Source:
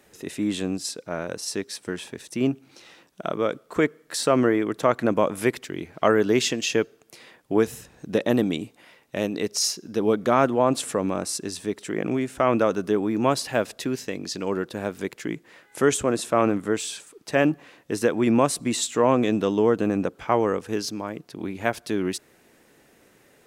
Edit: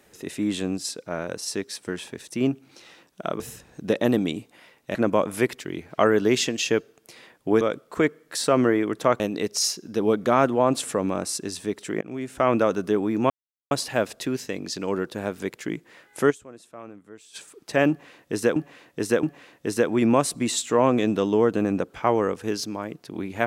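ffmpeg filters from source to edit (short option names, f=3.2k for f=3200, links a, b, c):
-filter_complex "[0:a]asplit=11[a][b][c][d][e][f][g][h][i][j][k];[a]atrim=end=3.402[l];[b]atrim=start=7.648:end=9.202[m];[c]atrim=start=4.988:end=7.652[n];[d]atrim=start=3.398:end=4.992[o];[e]atrim=start=9.198:end=12.01,asetpts=PTS-STARTPTS,afade=t=out:st=2.808:d=0.004:c=hsin:silence=0.0794328[p];[f]atrim=start=12.01:end=13.3,asetpts=PTS-STARTPTS,afade=t=in:d=0.41:silence=0.0794328,afade=t=out:st=1.286:d=0.004:c=hsin,apad=pad_dur=0.41[q];[g]atrim=start=13.3:end=16.01,asetpts=PTS-STARTPTS,afade=t=in:d=0.004:c=hsin,afade=t=out:st=2.59:d=0.12:c=exp:silence=0.0891251[r];[h]atrim=start=16.01:end=16.83,asetpts=PTS-STARTPTS,volume=-21dB[s];[i]atrim=start=16.83:end=18.152,asetpts=PTS-STARTPTS,afade=t=in:d=0.12:c=exp:silence=0.0891251[t];[j]atrim=start=17.478:end=18.152[u];[k]atrim=start=17.478[v];[l][m]acrossfade=d=0.004:c1=hsin:c2=hsin[w];[w][n]acrossfade=d=0.004:c1=hsin:c2=hsin[x];[x][o]acrossfade=d=0.004:c1=hsin:c2=hsin[y];[p][q][r][s][t]concat=n=5:v=0:a=1[z];[y][z]acrossfade=d=0.004:c1=hsin:c2=hsin[aa];[aa][u]acrossfade=d=0.004:c1=hsin:c2=hsin[ab];[ab][v]acrossfade=d=0.004:c1=hsin:c2=hsin"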